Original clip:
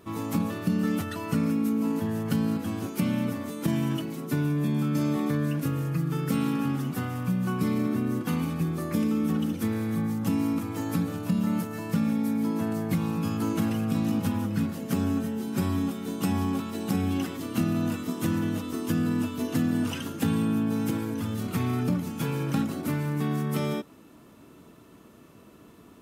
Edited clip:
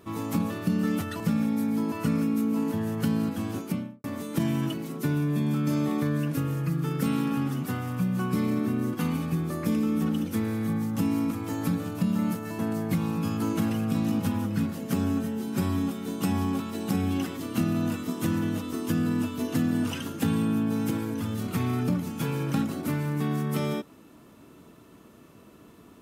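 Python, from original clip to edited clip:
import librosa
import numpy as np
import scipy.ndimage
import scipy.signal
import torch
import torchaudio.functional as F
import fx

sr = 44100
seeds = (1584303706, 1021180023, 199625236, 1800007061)

y = fx.studio_fade_out(x, sr, start_s=2.84, length_s=0.48)
y = fx.edit(y, sr, fx.move(start_s=11.87, length_s=0.72, to_s=1.2), tone=tone)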